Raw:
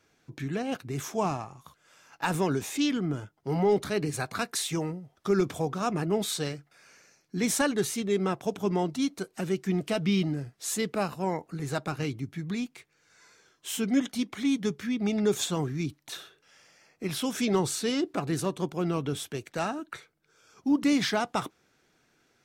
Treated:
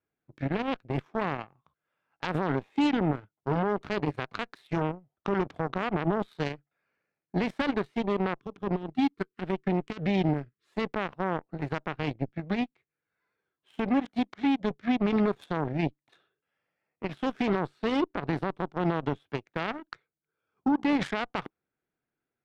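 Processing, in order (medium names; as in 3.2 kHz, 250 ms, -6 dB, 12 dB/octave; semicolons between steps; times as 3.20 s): distance through air 440 m; peak limiter -25 dBFS, peak gain reduction 10 dB; spectral selection erased 8.40–10.66 s, 460–1000 Hz; Chebyshev shaper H 3 -10 dB, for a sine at -24.5 dBFS; trim +8 dB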